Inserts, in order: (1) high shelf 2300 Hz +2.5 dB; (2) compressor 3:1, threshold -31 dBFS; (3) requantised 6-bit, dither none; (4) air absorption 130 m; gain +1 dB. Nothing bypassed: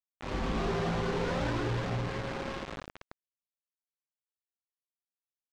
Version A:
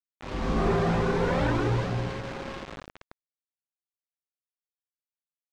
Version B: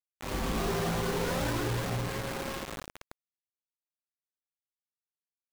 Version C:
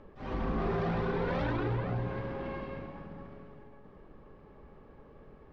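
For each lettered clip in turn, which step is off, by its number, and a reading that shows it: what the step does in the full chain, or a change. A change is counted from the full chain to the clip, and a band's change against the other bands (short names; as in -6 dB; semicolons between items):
2, mean gain reduction 2.0 dB; 4, 8 kHz band +10.5 dB; 3, distortion -7 dB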